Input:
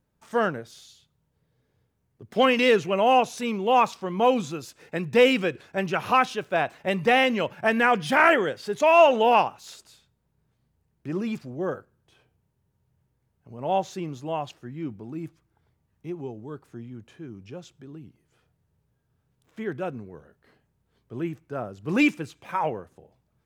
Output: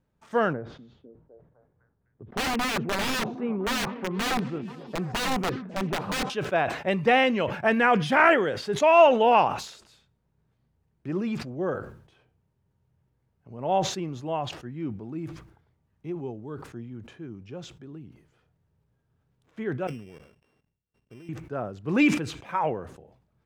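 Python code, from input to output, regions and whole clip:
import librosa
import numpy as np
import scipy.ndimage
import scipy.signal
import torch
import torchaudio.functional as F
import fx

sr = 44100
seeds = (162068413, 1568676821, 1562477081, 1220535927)

y = fx.chain(x, sr, fx.lowpass(hz=1200.0, slope=12),
    fx.overflow_wrap(gain_db=20.5),
    fx.echo_stepped(ms=253, hz=200.0, octaves=0.7, feedback_pct=70, wet_db=-8.0), at=(0.53, 6.3))
y = fx.chain(y, sr, fx.sample_sort(block=16),
    fx.level_steps(step_db=23), at=(19.87, 21.29))
y = fx.lowpass(y, sr, hz=3400.0, slope=6)
y = fx.sustainer(y, sr, db_per_s=88.0)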